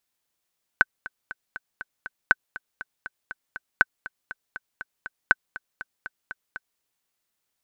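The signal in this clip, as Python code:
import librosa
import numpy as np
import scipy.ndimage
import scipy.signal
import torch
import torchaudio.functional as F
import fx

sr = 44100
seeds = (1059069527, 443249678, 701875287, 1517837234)

y = fx.click_track(sr, bpm=240, beats=6, bars=4, hz=1520.0, accent_db=19.0, level_db=-2.0)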